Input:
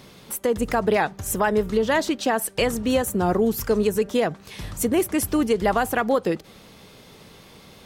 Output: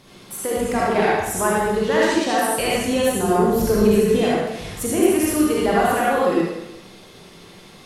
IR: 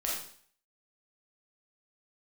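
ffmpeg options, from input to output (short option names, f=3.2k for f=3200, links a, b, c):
-filter_complex "[0:a]asettb=1/sr,asplit=3[a][b][c];[a]atrim=end=3.484[d];[b]atrim=start=3.48:end=4.16,asetpts=PTS-STARTPTS,afade=t=in:d=0.004:c=qsin,afade=t=out:st=0.676:d=0.004:c=qsin,lowshelf=f=230:g=11[e];[c]atrim=start=4.156[f];[d][e]acrossfade=d=0.004:c1=hsin:c2=qsin[g];[g][f]acrossfade=d=0.004:c1=qsin:c2=hsin[h];[1:a]atrim=start_sample=2205,asetrate=24696,aresample=44100[i];[h][i]afir=irnorm=-1:irlink=0,volume=-6dB"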